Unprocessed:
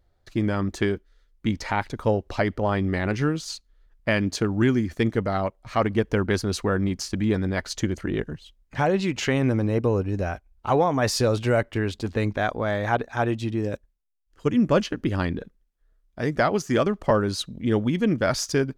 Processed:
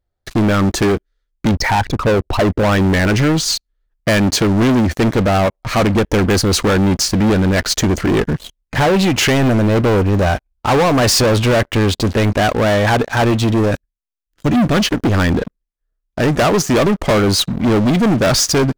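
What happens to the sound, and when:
1.51–2.63 formant sharpening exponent 2
13.71–14.79 band shelf 680 Hz -8.5 dB
whole clip: sample leveller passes 5

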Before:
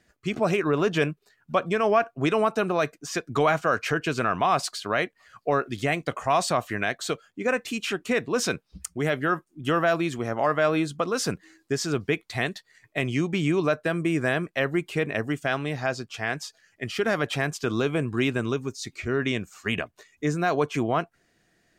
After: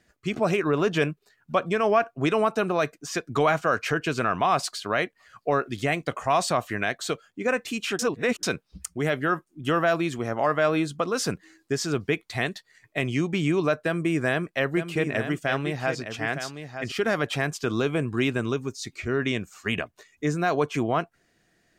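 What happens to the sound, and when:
7.99–8.43 reverse
13.85–16.92 echo 0.913 s -9 dB

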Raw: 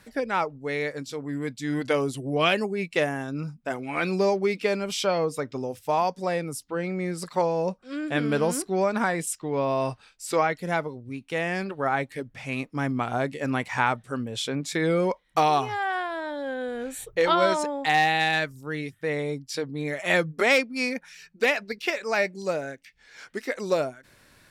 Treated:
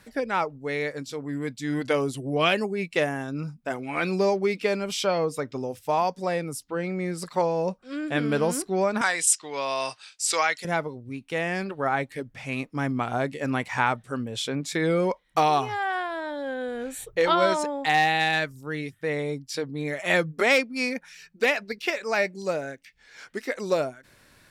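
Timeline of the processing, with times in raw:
9.01–10.65 weighting filter ITU-R 468

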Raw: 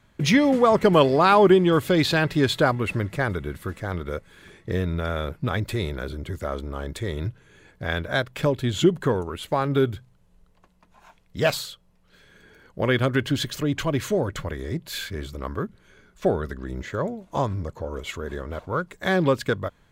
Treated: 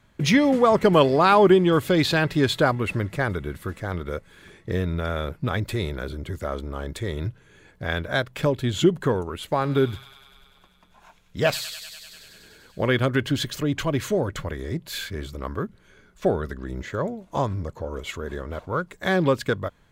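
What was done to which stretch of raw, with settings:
9.51–12.97 thin delay 98 ms, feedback 77%, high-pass 2600 Hz, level -7 dB

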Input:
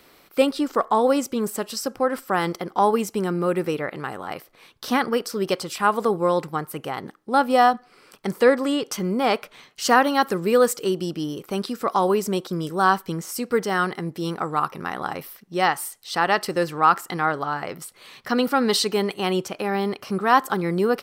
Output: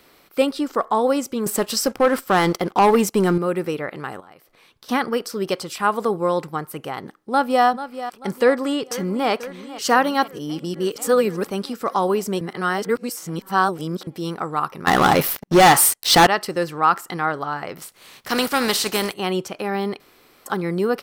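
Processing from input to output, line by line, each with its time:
1.46–3.38 sample leveller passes 2
4.2–4.89 compressor 2.5:1, threshold -50 dBFS
7.18–7.65 echo throw 0.44 s, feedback 40%, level -12.5 dB
8.41–9.29 echo throw 0.49 s, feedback 75%, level -15.5 dB
10.28–11.47 reverse
12.41–14.07 reverse
14.87–16.27 sample leveller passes 5
17.76–19.12 spectral contrast lowered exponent 0.57
20–20.46 room tone

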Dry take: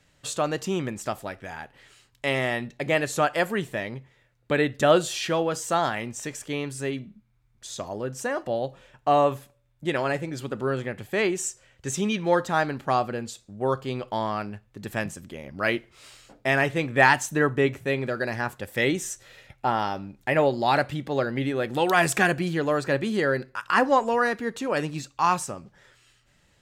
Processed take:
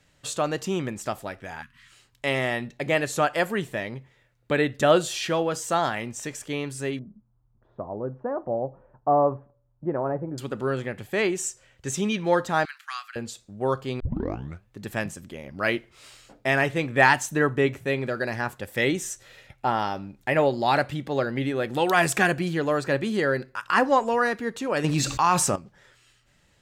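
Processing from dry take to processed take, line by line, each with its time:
1.62–1.92 spectral delete 270–950 Hz
6.99–10.38 LPF 1100 Hz 24 dB/oct
12.65–13.16 steep high-pass 1300 Hz
14 tape start 0.66 s
24.84–25.56 fast leveller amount 70%

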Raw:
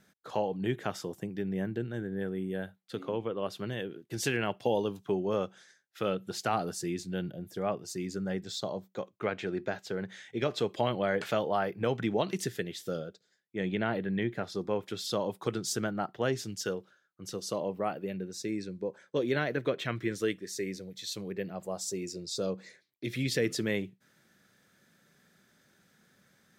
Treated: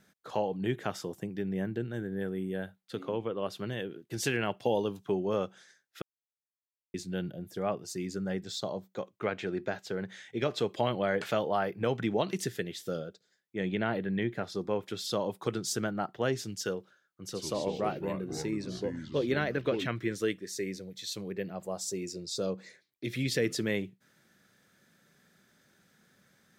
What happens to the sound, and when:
1.92–2.5 high shelf 9600 Hz +6.5 dB
6.02–6.94 mute
17.26–19.87 echoes that change speed 81 ms, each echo -4 st, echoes 3, each echo -6 dB

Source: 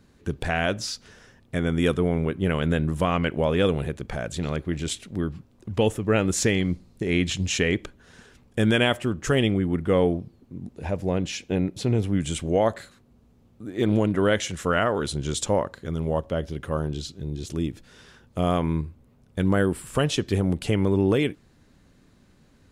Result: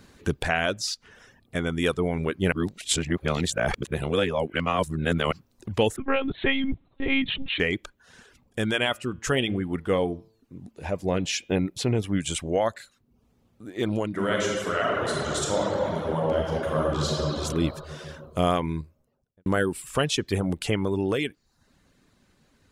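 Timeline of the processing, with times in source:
0.94–1.55 compressor 2:1, threshold -47 dBFS
2.52–5.32 reverse
5.96–7.6 monotone LPC vocoder at 8 kHz 270 Hz
8.73–11.52 de-hum 111 Hz, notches 33
14.08–17.12 reverb throw, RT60 3 s, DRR -5 dB
18.85–19.46 studio fade out
whole clip: reverb removal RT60 0.52 s; low shelf 470 Hz -6.5 dB; vocal rider 0.5 s; gain +1.5 dB

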